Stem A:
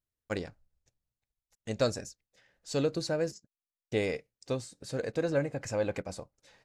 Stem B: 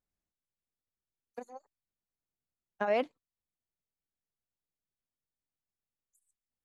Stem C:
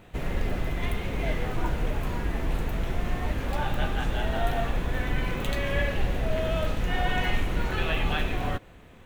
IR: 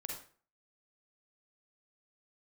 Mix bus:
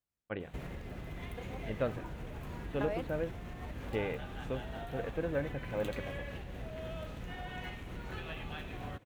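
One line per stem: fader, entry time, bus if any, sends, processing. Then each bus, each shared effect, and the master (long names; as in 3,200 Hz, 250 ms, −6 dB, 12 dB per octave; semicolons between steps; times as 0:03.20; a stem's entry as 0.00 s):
−4.5 dB, 0.00 s, no send, elliptic low-pass filter 3,200 Hz
−3.5 dB, 0.00 s, no send, downward compressor, threshold −31 dBFS, peak gain reduction 7 dB
−5.0 dB, 0.40 s, no send, parametric band 130 Hz +3 dB 1.9 octaves; downward compressor 12 to 1, threshold −31 dBFS, peak gain reduction 14.5 dB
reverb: not used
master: high-pass filter 43 Hz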